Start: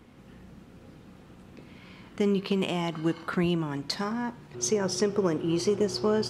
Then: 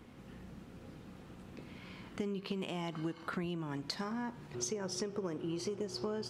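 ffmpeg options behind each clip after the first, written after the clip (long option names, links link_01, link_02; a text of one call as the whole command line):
ffmpeg -i in.wav -af "acompressor=threshold=-34dB:ratio=6,volume=-1.5dB" out.wav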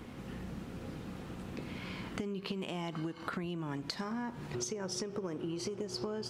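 ffmpeg -i in.wav -af "acompressor=threshold=-43dB:ratio=6,volume=8dB" out.wav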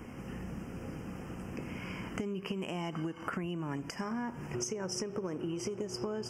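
ffmpeg -i in.wav -af "asuperstop=centerf=3900:order=12:qfactor=2.2,volume=1.5dB" out.wav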